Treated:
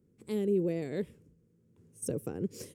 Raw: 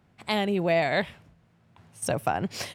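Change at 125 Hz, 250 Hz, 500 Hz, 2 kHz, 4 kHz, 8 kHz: −5.0, −3.0, −6.0, −22.0, −20.0, −6.5 decibels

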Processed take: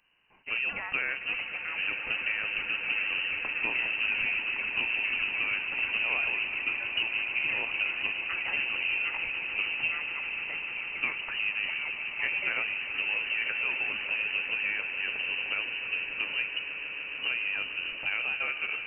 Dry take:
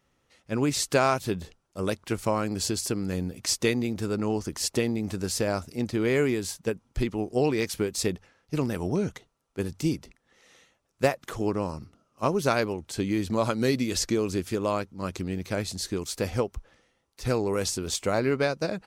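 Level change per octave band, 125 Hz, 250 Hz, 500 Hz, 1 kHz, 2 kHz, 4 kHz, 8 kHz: below −25 dB, −24.0 dB, −21.0 dB, −9.5 dB, +10.0 dB, +1.5 dB, below −40 dB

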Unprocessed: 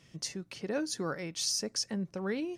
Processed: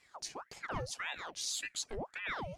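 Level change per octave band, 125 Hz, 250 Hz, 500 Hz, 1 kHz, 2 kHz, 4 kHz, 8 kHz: −5.5, −15.5, −9.0, +3.0, +2.5, −5.5, −5.5 decibels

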